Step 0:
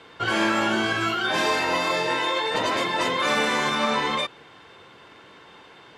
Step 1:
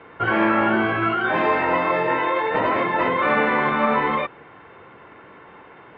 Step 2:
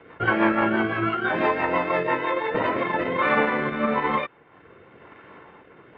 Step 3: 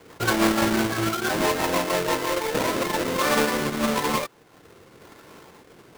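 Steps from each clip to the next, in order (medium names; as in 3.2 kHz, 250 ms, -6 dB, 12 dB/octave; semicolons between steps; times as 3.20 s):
low-pass 2.2 kHz 24 dB/octave; band-stop 1.6 kHz, Q 26; trim +4.5 dB
transient shaper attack +3 dB, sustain -9 dB; rotary cabinet horn 6 Hz, later 1 Hz, at 2.40 s
square wave that keeps the level; trim -4.5 dB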